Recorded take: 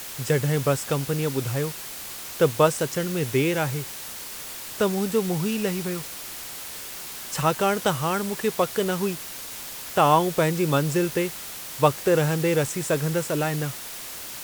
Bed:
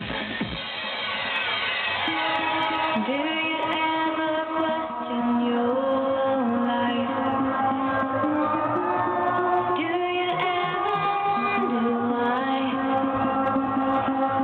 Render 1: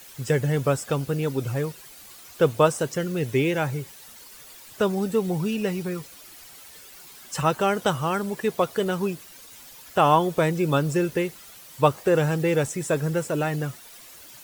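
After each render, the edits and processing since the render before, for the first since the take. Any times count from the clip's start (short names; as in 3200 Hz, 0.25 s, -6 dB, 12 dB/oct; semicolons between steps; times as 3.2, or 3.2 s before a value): denoiser 12 dB, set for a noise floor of -37 dBFS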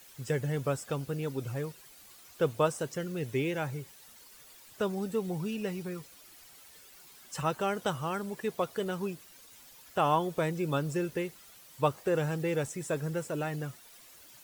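gain -8.5 dB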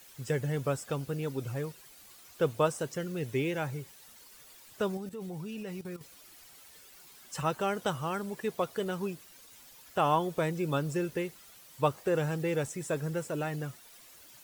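4.97–6.01 level quantiser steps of 13 dB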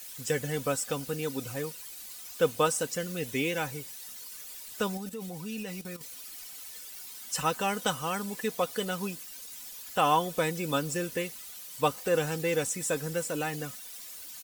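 high shelf 2600 Hz +10.5 dB; comb 4 ms, depth 50%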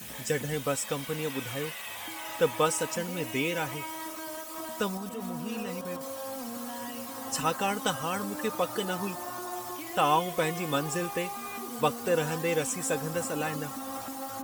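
add bed -15.5 dB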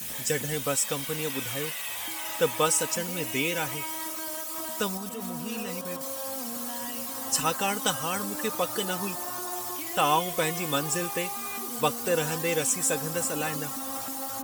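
high shelf 3400 Hz +8.5 dB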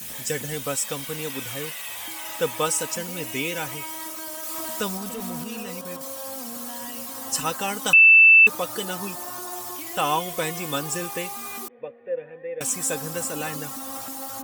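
4.43–5.44 zero-crossing step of -34.5 dBFS; 7.93–8.47 bleep 2650 Hz -8.5 dBFS; 11.68–12.61 vocal tract filter e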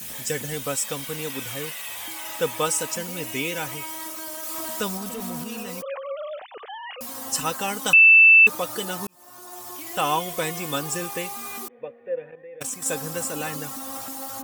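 5.82–7.01 sine-wave speech; 9.07–10 fade in; 12.31–12.86 level quantiser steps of 10 dB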